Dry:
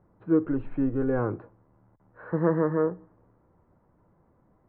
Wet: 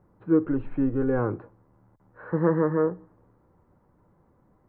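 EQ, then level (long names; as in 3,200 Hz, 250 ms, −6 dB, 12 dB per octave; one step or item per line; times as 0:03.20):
notch filter 660 Hz, Q 14
+1.5 dB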